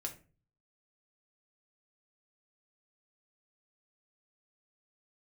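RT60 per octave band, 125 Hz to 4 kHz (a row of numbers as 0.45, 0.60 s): 0.70, 0.50, 0.40, 0.30, 0.30, 0.25 s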